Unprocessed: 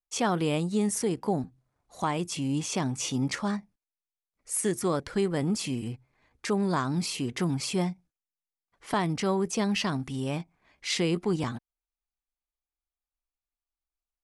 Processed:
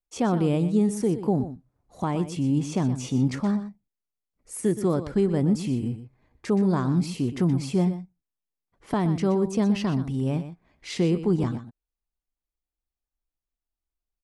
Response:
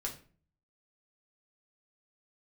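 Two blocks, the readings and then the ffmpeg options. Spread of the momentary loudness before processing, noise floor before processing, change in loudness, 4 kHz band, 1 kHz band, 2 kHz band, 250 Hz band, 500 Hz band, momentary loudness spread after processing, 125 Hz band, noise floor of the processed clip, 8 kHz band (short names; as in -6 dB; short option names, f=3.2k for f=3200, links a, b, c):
8 LU, under -85 dBFS, +4.0 dB, -6.0 dB, -1.0 dB, -5.0 dB, +5.5 dB, +3.5 dB, 10 LU, +6.5 dB, under -85 dBFS, -6.5 dB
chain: -filter_complex "[0:a]tiltshelf=f=710:g=7,asplit=2[a][b];[b]aecho=0:1:122:0.251[c];[a][c]amix=inputs=2:normalize=0"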